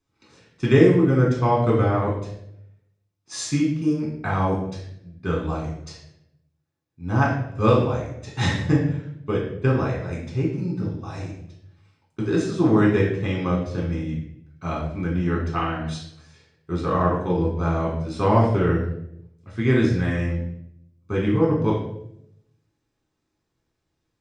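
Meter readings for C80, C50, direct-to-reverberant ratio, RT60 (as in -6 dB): 7.0 dB, 4.0 dB, -4.0 dB, 0.75 s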